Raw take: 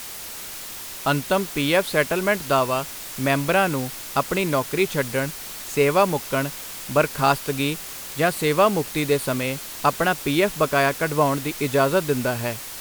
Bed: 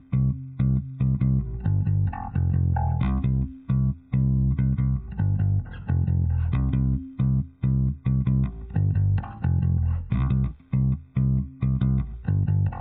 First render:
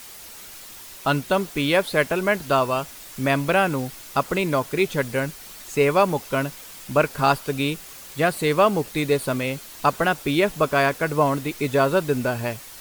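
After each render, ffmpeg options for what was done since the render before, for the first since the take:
-af "afftdn=nr=7:nf=-36"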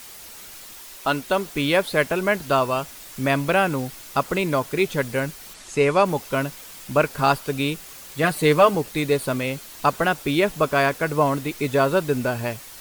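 -filter_complex "[0:a]asettb=1/sr,asplit=3[a][b][c];[a]atrim=end=0.734[d];[b]atrim=start=0.73:end=1.46,asetpts=PTS-STARTPTS,afade=t=in:d=0.004:c=qsin,afade=t=out:st=0.726:d=0.004:c=qsin,equalizer=f=120:t=o:w=1.3:g=-9.5[e];[c]atrim=start=1.456[f];[d][e]acrossfade=d=0.004:c1=hsin:c2=qsin[g];[g][f]acrossfade=d=0.004:c1=qsin:c2=hsin,asplit=3[h][i][j];[h]afade=t=out:st=5.53:d=0.02[k];[i]lowpass=f=10k:w=0.5412,lowpass=f=10k:w=1.3066,afade=t=in:st=5.53:d=0.02,afade=t=out:st=6.04:d=0.02[l];[j]afade=t=in:st=6.04:d=0.02[m];[k][l][m]amix=inputs=3:normalize=0,asettb=1/sr,asplit=3[n][o][p];[n]atrim=end=8.234[q];[o]atrim=start=8.23:end=8.75,asetpts=PTS-STARTPTS,afade=t=in:d=0.004:c=qsin,afade=t=out:st=0.516:d=0.004:c=qsin,aecho=1:1:6.6:0.65,atrim=end_sample=22932[r];[p]atrim=start=8.746[s];[q][r]acrossfade=d=0.004:c1=hsin:c2=qsin[t];[t][s]acrossfade=d=0.004:c1=qsin:c2=hsin"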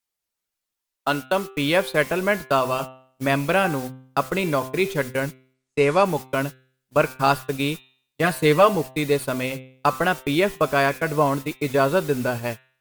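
-af "agate=range=-43dB:threshold=-27dB:ratio=16:detection=peak,bandreject=f=130.1:t=h:w=4,bandreject=f=260.2:t=h:w=4,bandreject=f=390.3:t=h:w=4,bandreject=f=520.4:t=h:w=4,bandreject=f=650.5:t=h:w=4,bandreject=f=780.6:t=h:w=4,bandreject=f=910.7:t=h:w=4,bandreject=f=1.0408k:t=h:w=4,bandreject=f=1.1709k:t=h:w=4,bandreject=f=1.301k:t=h:w=4,bandreject=f=1.4311k:t=h:w=4,bandreject=f=1.5612k:t=h:w=4,bandreject=f=1.6913k:t=h:w=4,bandreject=f=1.8214k:t=h:w=4,bandreject=f=1.9515k:t=h:w=4,bandreject=f=2.0816k:t=h:w=4,bandreject=f=2.2117k:t=h:w=4,bandreject=f=2.3418k:t=h:w=4,bandreject=f=2.4719k:t=h:w=4,bandreject=f=2.602k:t=h:w=4,bandreject=f=2.7321k:t=h:w=4,bandreject=f=2.8622k:t=h:w=4,bandreject=f=2.9923k:t=h:w=4,bandreject=f=3.1224k:t=h:w=4,bandreject=f=3.2525k:t=h:w=4,bandreject=f=3.3826k:t=h:w=4,bandreject=f=3.5127k:t=h:w=4,bandreject=f=3.6428k:t=h:w=4,bandreject=f=3.7729k:t=h:w=4,bandreject=f=3.903k:t=h:w=4,bandreject=f=4.0331k:t=h:w=4"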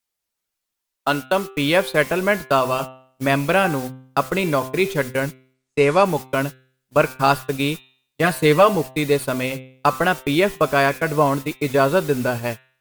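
-af "volume=2.5dB,alimiter=limit=-3dB:level=0:latency=1"

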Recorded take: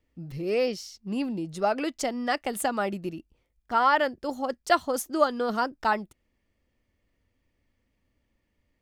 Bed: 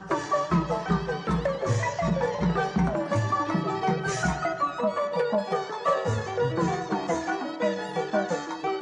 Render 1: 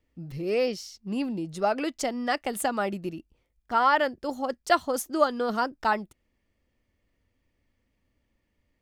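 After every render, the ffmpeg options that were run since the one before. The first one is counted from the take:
-af anull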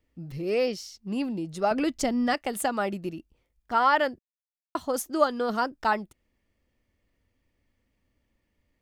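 -filter_complex "[0:a]asettb=1/sr,asplit=3[a][b][c];[a]atrim=end=1.714[d];[b]atrim=start=1.71:end=2.34,asetpts=PTS-STARTPTS,afade=t=in:d=0.004:c=qsin,afade=t=out:st=0.626:d=0.004:c=qsin,bass=f=250:g=13,treble=f=4k:g=1[e];[c]atrim=start=2.336[f];[d][e]acrossfade=d=0.004:c1=hsin:c2=qsin[g];[g][f]acrossfade=d=0.004:c1=qsin:c2=hsin,asplit=3[h][i][j];[h]atrim=end=4.19,asetpts=PTS-STARTPTS,afade=t=out:st=4.186:d=0.004:c=hsin[k];[i]atrim=start=4.19:end=4.75,asetpts=PTS-STARTPTS,volume=0[l];[j]atrim=start=4.75,asetpts=PTS-STARTPTS,afade=t=in:d=0.004:c=hsin[m];[k][l][m]concat=n=3:v=0:a=1"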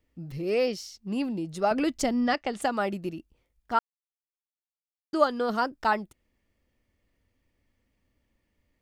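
-filter_complex "[0:a]asplit=3[a][b][c];[a]afade=t=out:st=2.2:d=0.02[d];[b]lowpass=f=6.5k:w=0.5412,lowpass=f=6.5k:w=1.3066,afade=t=in:st=2.2:d=0.02,afade=t=out:st=2.61:d=0.02[e];[c]afade=t=in:st=2.61:d=0.02[f];[d][e][f]amix=inputs=3:normalize=0,asplit=3[g][h][i];[g]atrim=end=3.79,asetpts=PTS-STARTPTS,afade=t=out:st=3.786:d=0.004:c=hsin[j];[h]atrim=start=3.79:end=5.13,asetpts=PTS-STARTPTS,volume=0[k];[i]atrim=start=5.13,asetpts=PTS-STARTPTS,afade=t=in:d=0.004:c=hsin[l];[j][k][l]concat=n=3:v=0:a=1"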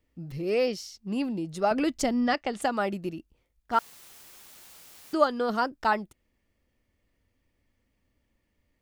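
-filter_complex "[0:a]asettb=1/sr,asplit=3[a][b][c];[a]atrim=end=3.734[d];[b]atrim=start=3.73:end=5.15,asetpts=PTS-STARTPTS,afade=t=in:d=0.004:c=qsin,afade=t=out:st=1.416:d=0.004:c=qsin,aeval=exprs='val(0)+0.5*0.0112*sgn(val(0))':c=same[e];[c]atrim=start=5.146[f];[d][e]acrossfade=d=0.004:c1=hsin:c2=qsin[g];[g][f]acrossfade=d=0.004:c1=qsin:c2=hsin"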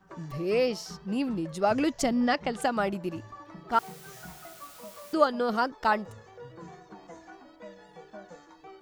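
-filter_complex "[1:a]volume=-20dB[a];[0:a][a]amix=inputs=2:normalize=0"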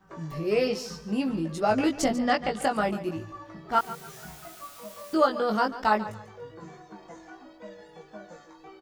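-filter_complex "[0:a]asplit=2[a][b];[b]adelay=19,volume=-3.5dB[c];[a][c]amix=inputs=2:normalize=0,aecho=1:1:143|286|429:0.178|0.0533|0.016"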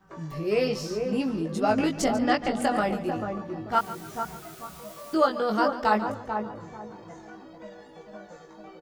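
-filter_complex "[0:a]asplit=2[a][b];[b]adelay=442,lowpass=f=830:p=1,volume=-4dB,asplit=2[c][d];[d]adelay=442,lowpass=f=830:p=1,volume=0.33,asplit=2[e][f];[f]adelay=442,lowpass=f=830:p=1,volume=0.33,asplit=2[g][h];[h]adelay=442,lowpass=f=830:p=1,volume=0.33[i];[a][c][e][g][i]amix=inputs=5:normalize=0"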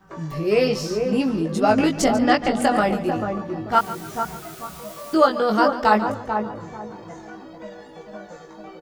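-af "volume=6dB"

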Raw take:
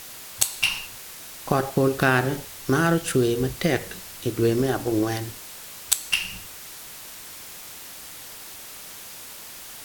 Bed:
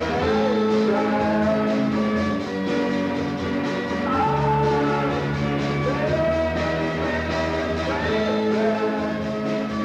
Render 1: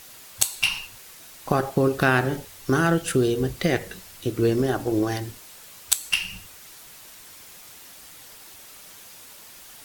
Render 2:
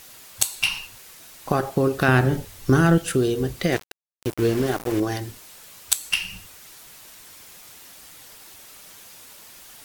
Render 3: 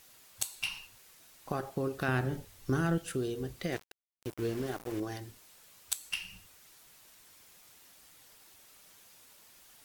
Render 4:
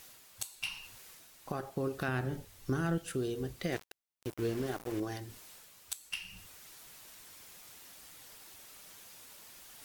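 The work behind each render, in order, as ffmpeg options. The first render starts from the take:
-af "afftdn=nr=6:nf=-41"
-filter_complex "[0:a]asettb=1/sr,asplit=3[a][b][c];[a]atrim=end=2.084[d];[b]atrim=start=2.08:end=2.98,asetpts=PTS-STARTPTS,afade=t=in:d=0.004:c=qsin,afade=t=out:st=0.896:d=0.004:c=qsin,lowshelf=f=220:g=10[e];[c]atrim=start=2.976[f];[d][e]acrossfade=d=0.004:c1=hsin:c2=qsin[g];[g][f]acrossfade=d=0.004:c1=qsin:c2=hsin,asettb=1/sr,asplit=3[h][i][j];[h]atrim=end=3.724[k];[i]atrim=start=3.72:end=5,asetpts=PTS-STARTPTS,afade=t=in:d=0.004:c=qsin,afade=t=out:st=1.276:d=0.004:c=qsin,aeval=exprs='val(0)*gte(abs(val(0)),0.0398)':c=same[l];[j]atrim=start=4.996[m];[k][l]acrossfade=d=0.004:c1=hsin:c2=qsin[n];[n][m]acrossfade=d=0.004:c1=qsin:c2=hsin"
-af "volume=-13dB"
-af "alimiter=limit=-22dB:level=0:latency=1:release=479,areverse,acompressor=mode=upward:threshold=-46dB:ratio=2.5,areverse"

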